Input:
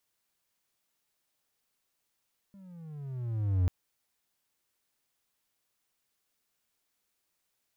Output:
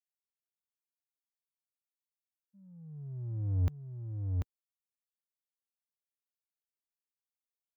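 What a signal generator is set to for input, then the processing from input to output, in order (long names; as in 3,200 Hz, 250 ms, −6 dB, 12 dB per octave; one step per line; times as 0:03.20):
pitch glide with a swell triangle, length 1.14 s, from 201 Hz, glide −14.5 semitones, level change +28 dB, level −19.5 dB
spectral dynamics exaggerated over time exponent 2
single-tap delay 740 ms −3.5 dB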